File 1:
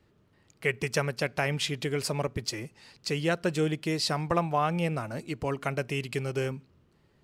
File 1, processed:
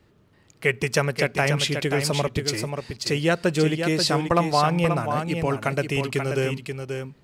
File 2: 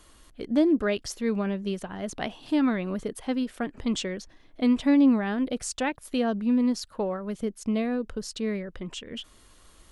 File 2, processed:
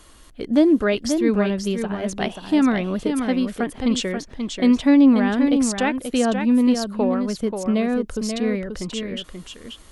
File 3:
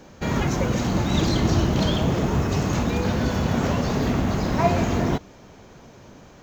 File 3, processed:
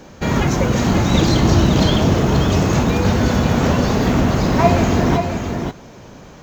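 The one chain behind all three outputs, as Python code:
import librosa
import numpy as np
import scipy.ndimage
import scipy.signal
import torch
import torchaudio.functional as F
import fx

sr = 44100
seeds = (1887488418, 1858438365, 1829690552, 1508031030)

y = x + 10.0 ** (-6.5 / 20.0) * np.pad(x, (int(534 * sr / 1000.0), 0))[:len(x)]
y = y * librosa.db_to_amplitude(6.0)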